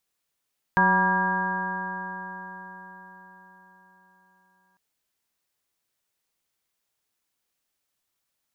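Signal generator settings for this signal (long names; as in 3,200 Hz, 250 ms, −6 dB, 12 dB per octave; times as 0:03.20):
stiff-string partials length 4.00 s, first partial 184 Hz, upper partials −9/−10/−6/5/−5.5/−14/4 dB, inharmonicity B 0.0034, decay 4.85 s, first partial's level −24 dB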